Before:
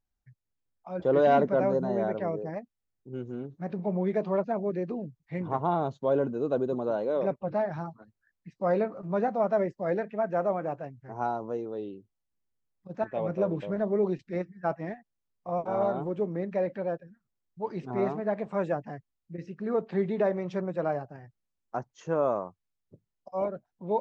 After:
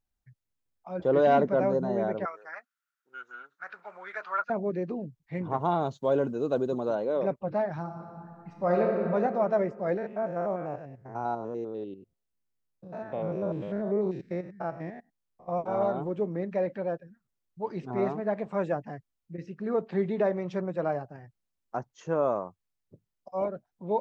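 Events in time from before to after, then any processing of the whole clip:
2.25–4.5 resonant high-pass 1400 Hz, resonance Q 10
5.6–6.95 high shelf 3500 Hz +10 dB
7.8–9 reverb throw, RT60 2.9 s, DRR 0 dB
9.97–15.48 stepped spectrum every 0.1 s

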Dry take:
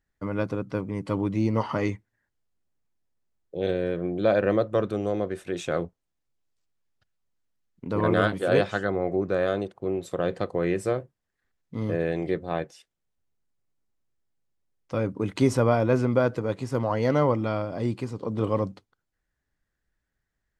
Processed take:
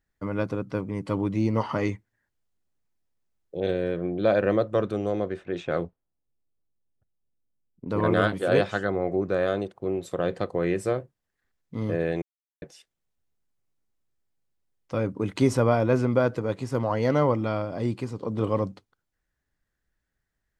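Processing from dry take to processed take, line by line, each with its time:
3.6–7.88 low-pass opened by the level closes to 550 Hz, open at -21.5 dBFS
12.22–12.62 mute

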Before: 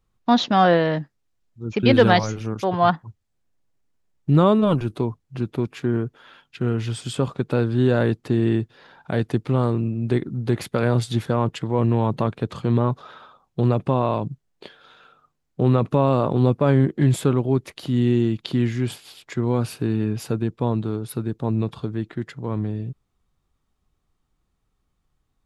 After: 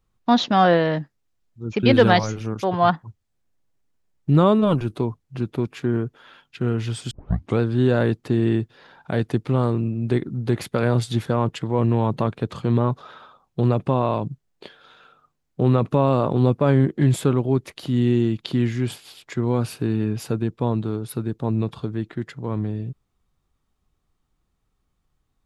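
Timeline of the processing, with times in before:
7.11 tape start 0.49 s

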